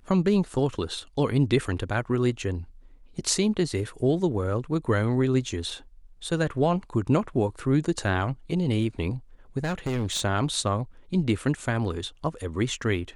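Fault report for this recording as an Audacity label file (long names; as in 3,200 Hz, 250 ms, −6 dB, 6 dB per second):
9.580000	10.220000	clipping −24 dBFS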